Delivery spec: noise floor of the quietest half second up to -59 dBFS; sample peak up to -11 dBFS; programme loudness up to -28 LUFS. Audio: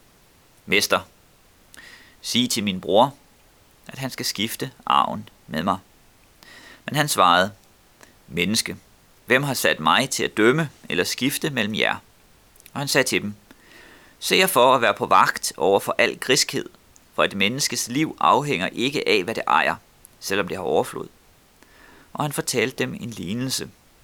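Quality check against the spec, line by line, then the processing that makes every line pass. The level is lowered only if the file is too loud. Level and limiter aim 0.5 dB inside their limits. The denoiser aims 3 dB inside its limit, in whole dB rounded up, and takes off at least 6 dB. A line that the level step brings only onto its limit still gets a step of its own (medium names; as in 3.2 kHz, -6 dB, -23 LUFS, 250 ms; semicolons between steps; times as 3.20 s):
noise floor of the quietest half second -55 dBFS: fail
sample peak -4.0 dBFS: fail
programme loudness -21.0 LUFS: fail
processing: trim -7.5 dB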